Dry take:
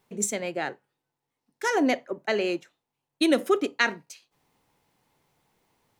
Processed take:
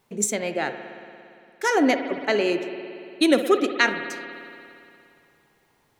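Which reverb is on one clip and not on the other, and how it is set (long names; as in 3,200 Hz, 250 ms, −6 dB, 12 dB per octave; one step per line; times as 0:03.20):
spring reverb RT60 2.6 s, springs 57 ms, chirp 25 ms, DRR 8 dB
level +3.5 dB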